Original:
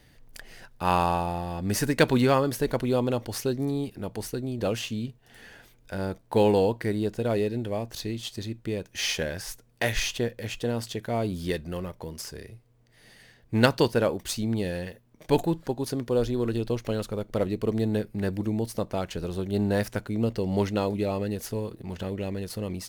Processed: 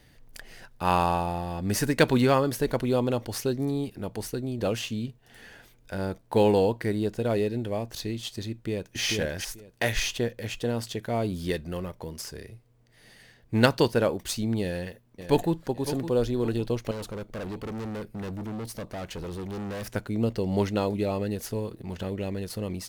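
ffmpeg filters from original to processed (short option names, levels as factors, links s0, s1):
-filter_complex "[0:a]asplit=2[s0][s1];[s1]afade=t=in:st=8.51:d=0.01,afade=t=out:st=9:d=0.01,aecho=0:1:440|880|1320:0.794328|0.119149|0.0178724[s2];[s0][s2]amix=inputs=2:normalize=0,asplit=2[s3][s4];[s4]afade=t=in:st=14.62:d=0.01,afade=t=out:st=15.54:d=0.01,aecho=0:1:560|1120|1680|2240:0.281838|0.112735|0.0450941|0.0180377[s5];[s3][s5]amix=inputs=2:normalize=0,asettb=1/sr,asplit=3[s6][s7][s8];[s6]atrim=end=16.914[s9];[s7]atrim=start=16.91:end=19.95,asetpts=PTS-STARTPTS,afade=t=in:d=0.004:c=qsin,afade=t=out:st=3.036:d=0.004:c=qsin,volume=42.2,asoftclip=hard,volume=0.0237[s10];[s8]atrim=start=19.946[s11];[s9][s10]acrossfade=d=0.004:c1=hsin:c2=qsin[s12];[s12][s11]acrossfade=d=0.004:c1=qsin:c2=hsin"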